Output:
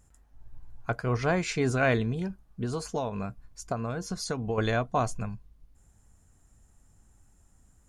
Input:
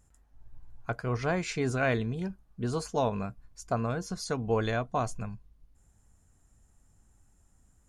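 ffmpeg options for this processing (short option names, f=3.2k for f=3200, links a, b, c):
-filter_complex "[0:a]asettb=1/sr,asplit=3[a][b][c];[a]atrim=end=2.154[d];[b]atrim=start=2.15:end=4.58,asetpts=PTS-STARTPTS,afade=t=in:d=0.004:c=qsin,afade=t=out:st=2.426:d=0.004:c=qsin,acompressor=threshold=-30dB:ratio=10[e];[c]atrim=start=4.576[f];[d][e]acrossfade=d=0.004:c1=hsin:c2=qsin[g];[g][f]acrossfade=d=0.004:c1=qsin:c2=hsin,volume=3dB"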